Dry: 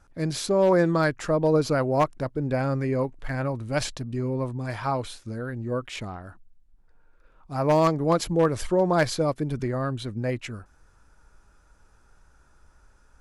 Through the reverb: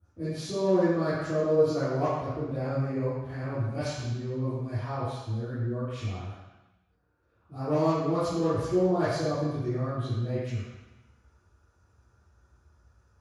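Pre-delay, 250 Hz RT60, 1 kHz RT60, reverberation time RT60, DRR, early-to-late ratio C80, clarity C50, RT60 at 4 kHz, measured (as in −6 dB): 3 ms, 1.0 s, 1.1 s, 1.0 s, −16.5 dB, 0.5 dB, −3.0 dB, 1.1 s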